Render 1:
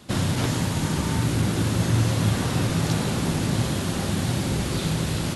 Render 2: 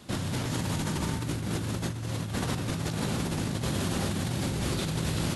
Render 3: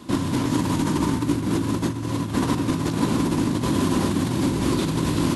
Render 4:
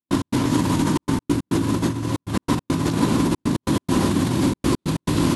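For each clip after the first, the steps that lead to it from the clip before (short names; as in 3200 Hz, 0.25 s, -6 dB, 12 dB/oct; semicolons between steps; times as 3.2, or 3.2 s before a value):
negative-ratio compressor -26 dBFS, ratio -1; gain -4.5 dB
small resonant body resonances 290/1000 Hz, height 13 dB, ringing for 30 ms; gain +3 dB
step gate ".x.xxxxxx.x" 139 bpm -60 dB; gain +2.5 dB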